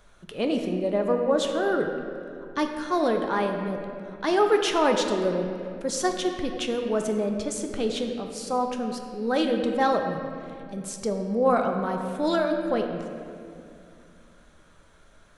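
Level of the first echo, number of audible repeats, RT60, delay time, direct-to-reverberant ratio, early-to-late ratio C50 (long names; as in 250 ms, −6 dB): no echo audible, no echo audible, 2.5 s, no echo audible, 3.0 dB, 5.0 dB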